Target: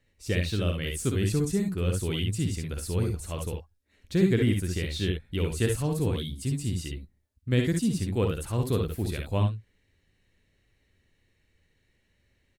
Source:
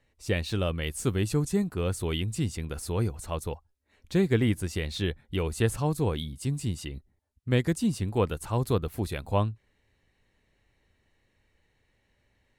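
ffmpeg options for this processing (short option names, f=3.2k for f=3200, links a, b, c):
-af "equalizer=f=870:w=1.2:g=-8.5,aecho=1:1:57|68:0.531|0.447"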